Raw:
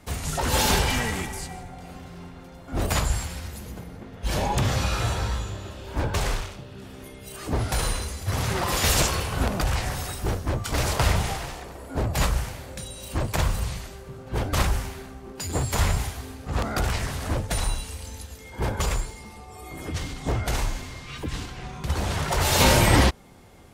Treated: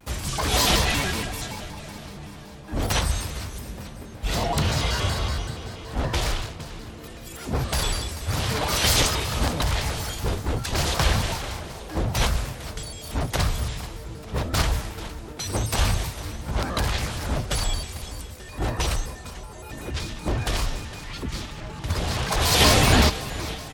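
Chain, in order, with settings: dynamic EQ 4000 Hz, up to +6 dB, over -45 dBFS, Q 1.8; feedback echo 0.448 s, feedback 52%, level -14.5 dB; shaped vibrato square 5.3 Hz, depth 250 cents

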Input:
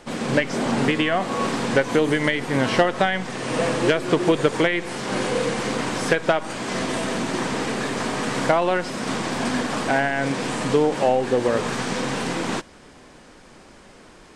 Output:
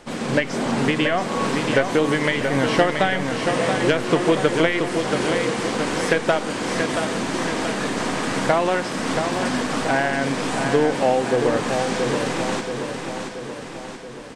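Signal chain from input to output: feedback echo 0.679 s, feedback 56%, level -6 dB

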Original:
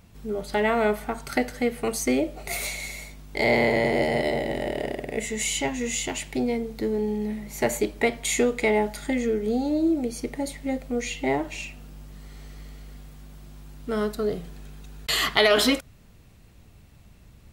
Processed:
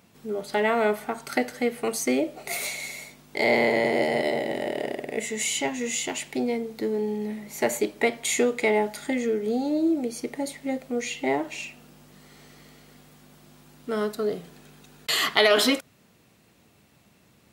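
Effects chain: HPF 200 Hz 12 dB/oct

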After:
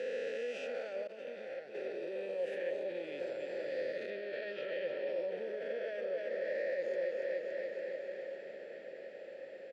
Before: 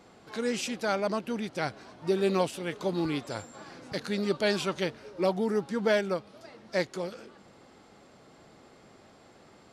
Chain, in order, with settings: spectral swells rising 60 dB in 1.92 s; 4.1–5.08 LPF 4600 Hz 24 dB/oct; feedback echo 0.284 s, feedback 59%, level -9 dB; limiter -21.5 dBFS, peak gain reduction 10.5 dB; diffused feedback echo 1.221 s, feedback 56%, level -16 dB; compressor 5:1, threshold -35 dBFS, peak gain reduction 8.5 dB; 1.07–1.75 expander -32 dBFS; vowel filter e; gain +7.5 dB

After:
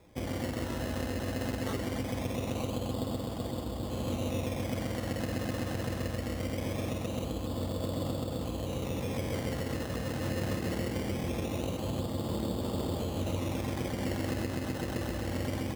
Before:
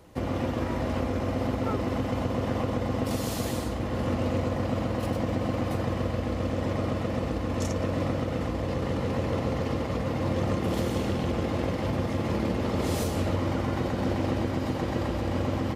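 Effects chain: LPF 1300 Hz 12 dB/oct; decimation with a swept rate 15×, swing 60% 0.22 Hz; gain -5.5 dB

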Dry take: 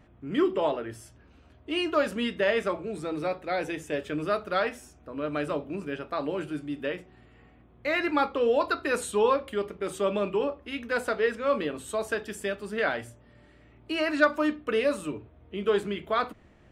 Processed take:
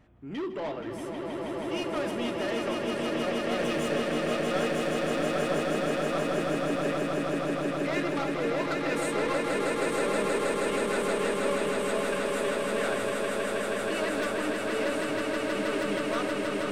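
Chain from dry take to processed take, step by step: 3.59–4.05 sample leveller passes 2; soft clip -26.5 dBFS, distortion -9 dB; on a send: swelling echo 0.159 s, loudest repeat 8, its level -4.5 dB; on the sum: gain -3 dB

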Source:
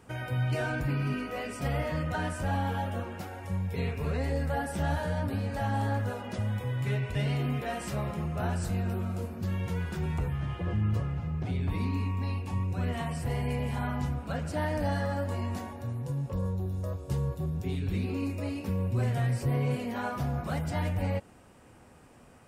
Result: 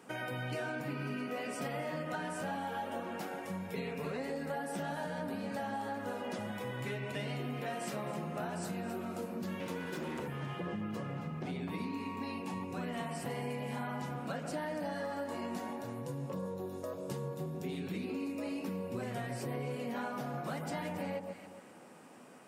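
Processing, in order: 9.6–10.27 minimum comb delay 2 ms; HPF 180 Hz 24 dB/oct; echo with dull and thin repeats by turns 0.136 s, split 1200 Hz, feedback 52%, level -8 dB; compressor, threshold -36 dBFS, peak gain reduction 9 dB; gain +1 dB

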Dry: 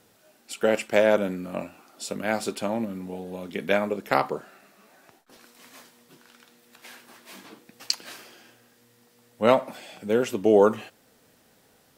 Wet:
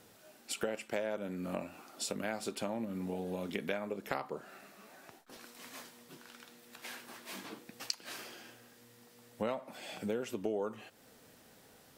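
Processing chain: compressor 6:1, threshold -34 dBFS, peak gain reduction 19.5 dB

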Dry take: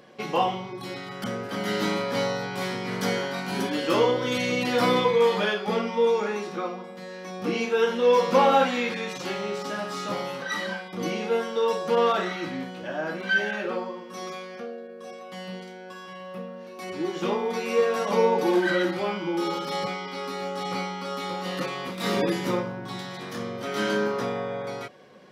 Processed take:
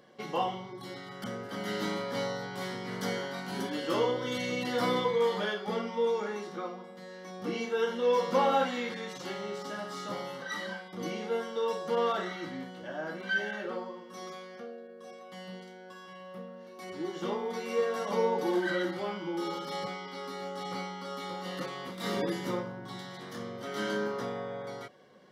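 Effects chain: Butterworth band-stop 2500 Hz, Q 7.8; gain -7 dB

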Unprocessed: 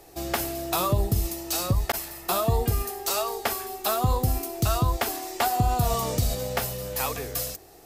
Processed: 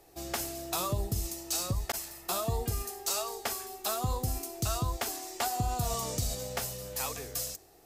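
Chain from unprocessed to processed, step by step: dynamic EQ 6900 Hz, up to +8 dB, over -47 dBFS, Q 0.9; gain -8.5 dB

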